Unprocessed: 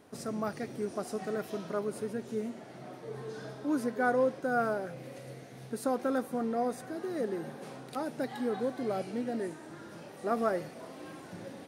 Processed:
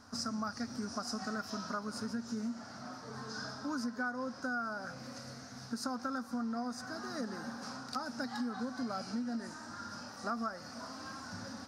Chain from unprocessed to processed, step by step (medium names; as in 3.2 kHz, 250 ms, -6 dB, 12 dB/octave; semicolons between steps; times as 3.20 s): FFT filter 100 Hz 0 dB, 150 Hz -17 dB, 240 Hz 0 dB, 350 Hz -21 dB, 1.4 kHz +3 dB, 2.1 kHz -12 dB, 3.4 kHz -11 dB, 5.1 kHz +9 dB, 9.4 kHz -11 dB, 14 kHz -13 dB; compression 8:1, threshold -41 dBFS, peak gain reduction 14.5 dB; trim +7 dB